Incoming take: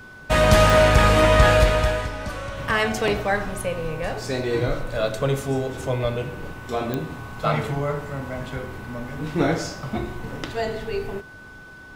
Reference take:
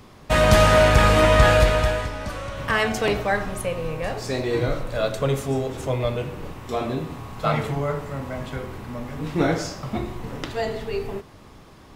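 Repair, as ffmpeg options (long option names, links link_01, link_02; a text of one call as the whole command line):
ffmpeg -i in.wav -af "adeclick=threshold=4,bandreject=frequency=1500:width=30" out.wav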